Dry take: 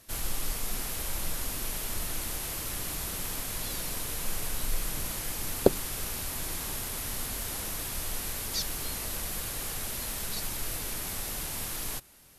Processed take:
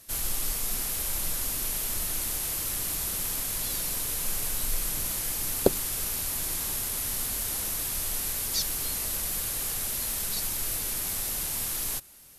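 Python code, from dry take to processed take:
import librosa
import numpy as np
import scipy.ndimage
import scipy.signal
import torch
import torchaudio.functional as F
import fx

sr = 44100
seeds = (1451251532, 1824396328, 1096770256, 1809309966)

y = fx.high_shelf(x, sr, hz=4700.0, db=8.0)
y = fx.dmg_crackle(y, sr, seeds[0], per_s=120.0, level_db=-55.0)
y = y * 10.0 ** (-1.0 / 20.0)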